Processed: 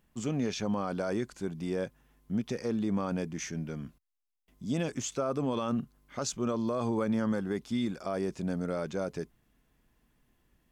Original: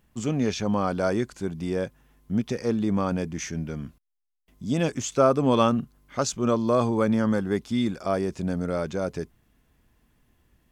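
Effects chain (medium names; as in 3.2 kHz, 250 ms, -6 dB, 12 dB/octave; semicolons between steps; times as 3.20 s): peaking EQ 81 Hz -9 dB 0.51 oct; peak limiter -17.5 dBFS, peak gain reduction 10.5 dB; trim -4.5 dB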